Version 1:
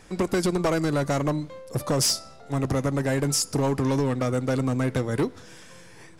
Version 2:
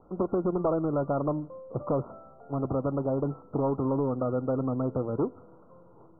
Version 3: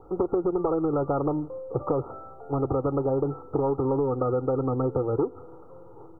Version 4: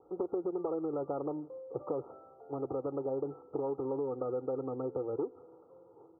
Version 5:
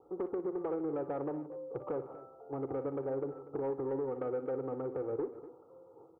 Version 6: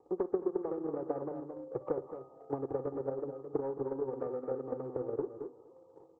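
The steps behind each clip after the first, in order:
Chebyshev low-pass filter 1,400 Hz, order 10; parametric band 530 Hz +6.5 dB 2.5 octaves; level −7.5 dB
comb filter 2.4 ms, depth 67%; downward compressor 5 to 1, threshold −27 dBFS, peak gain reduction 7 dB; level +5.5 dB
resonant band-pass 480 Hz, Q 0.8; level −8.5 dB
soft clipping −27.5 dBFS, distortion −19 dB; on a send: multi-tap delay 44/59/151/242 ms −19/−13.5/−19/−15.5 dB
hearing-aid frequency compression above 1,100 Hz 1.5 to 1; single-tap delay 219 ms −6.5 dB; transient designer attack +11 dB, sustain −1 dB; level −4 dB

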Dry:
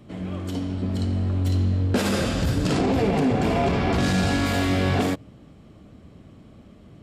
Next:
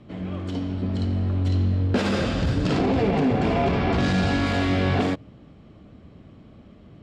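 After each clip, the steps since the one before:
low-pass filter 4,700 Hz 12 dB per octave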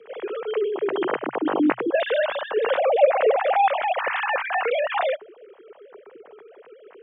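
three sine waves on the formant tracks
frequency shifter +120 Hz

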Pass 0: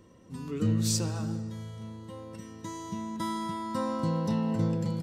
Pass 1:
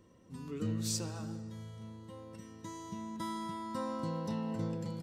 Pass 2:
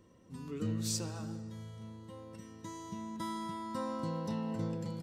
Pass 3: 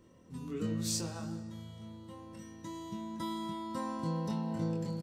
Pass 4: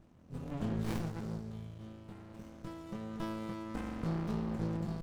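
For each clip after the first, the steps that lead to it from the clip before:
dynamic equaliser 130 Hz, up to −4 dB, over −36 dBFS, Q 0.84; level −6 dB
no processing that can be heard
double-tracking delay 24 ms −3.5 dB
windowed peak hold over 65 samples; level +1.5 dB

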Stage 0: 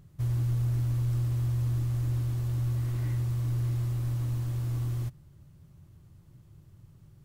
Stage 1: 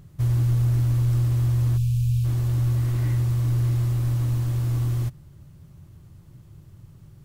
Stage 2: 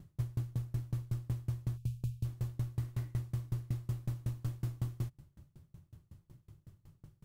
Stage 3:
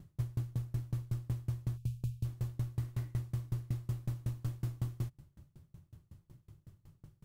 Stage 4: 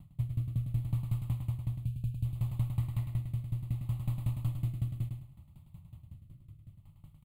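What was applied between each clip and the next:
gain on a spectral selection 0:01.77–0:02.25, 200–2,300 Hz −22 dB; level +7 dB
downward compressor, threshold −24 dBFS, peak gain reduction 6.5 dB; tremolo with a ramp in dB decaying 5.4 Hz, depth 29 dB; level −3 dB
no processing that can be heard
on a send: repeating echo 105 ms, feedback 28%, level −5.5 dB; on the sum: rotating-speaker cabinet horn 0.65 Hz; phaser with its sweep stopped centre 1,600 Hz, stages 6; level +6 dB

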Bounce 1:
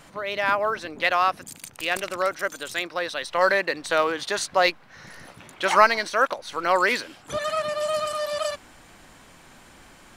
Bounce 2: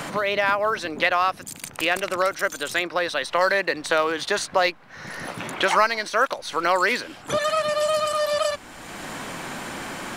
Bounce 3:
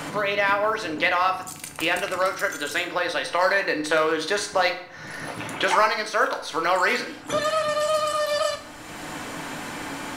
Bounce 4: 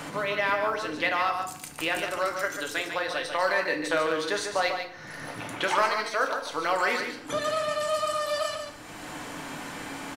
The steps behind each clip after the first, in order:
multiband upward and downward compressor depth 70%; level +1.5 dB
feedback delay network reverb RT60 0.65 s, low-frequency decay 1.1×, high-frequency decay 0.8×, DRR 3.5 dB; level −2 dB
single-tap delay 145 ms −7 dB; level −5 dB

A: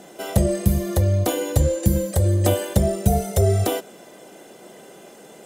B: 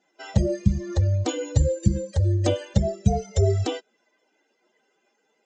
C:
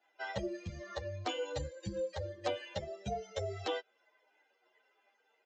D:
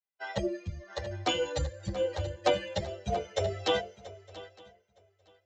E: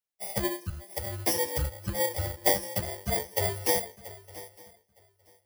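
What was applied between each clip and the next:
spectral dynamics exaggerated over time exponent 2; dynamic equaliser 1,100 Hz, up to −5 dB, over −40 dBFS, Q 0.81; Butterworth low-pass 7,400 Hz 96 dB per octave; level +1.5 dB
three-way crossover with the lows and the highs turned down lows −21 dB, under 480 Hz, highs −21 dB, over 4,400 Hz; downward compressor 2 to 1, threshold −33 dBFS, peak gain reduction 6 dB; barber-pole flanger 9.5 ms −1.4 Hz; level +2 dB
feedback echo with a long and a short gap by turns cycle 912 ms, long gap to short 3 to 1, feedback 38%, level −9.5 dB; multiband upward and downward expander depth 100%; level +5.5 dB
samples in bit-reversed order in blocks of 32 samples; level +2 dB

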